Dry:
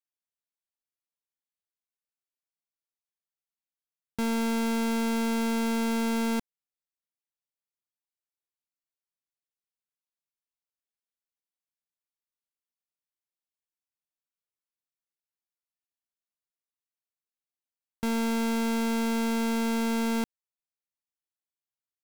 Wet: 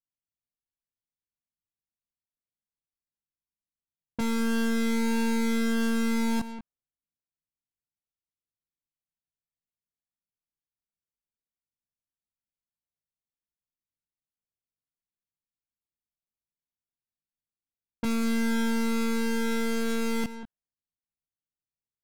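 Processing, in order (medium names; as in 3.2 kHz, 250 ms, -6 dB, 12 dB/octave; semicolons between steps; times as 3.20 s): echo from a far wall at 33 m, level -14 dB; level-controlled noise filter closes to 320 Hz, open at -29 dBFS; chorus voices 6, 0.16 Hz, delay 19 ms, depth 1 ms; in parallel at -1 dB: peak limiter -29 dBFS, peak gain reduction 7.5 dB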